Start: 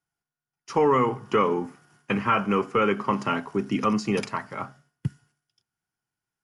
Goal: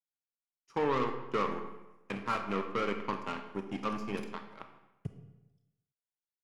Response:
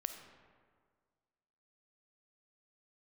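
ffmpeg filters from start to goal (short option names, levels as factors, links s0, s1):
-filter_complex "[0:a]aeval=exprs='0.316*(cos(1*acos(clip(val(0)/0.316,-1,1)))-cos(1*PI/2))+0.0224*(cos(2*acos(clip(val(0)/0.316,-1,1)))-cos(2*PI/2))+0.0224*(cos(3*acos(clip(val(0)/0.316,-1,1)))-cos(3*PI/2))+0.0282*(cos(7*acos(clip(val(0)/0.316,-1,1)))-cos(7*PI/2))':c=same,acrossover=split=2800[s0][s1];[s1]acompressor=threshold=0.0158:ratio=4:attack=1:release=60[s2];[s0][s2]amix=inputs=2:normalize=0[s3];[1:a]atrim=start_sample=2205,asetrate=79380,aresample=44100[s4];[s3][s4]afir=irnorm=-1:irlink=0,volume=0.794"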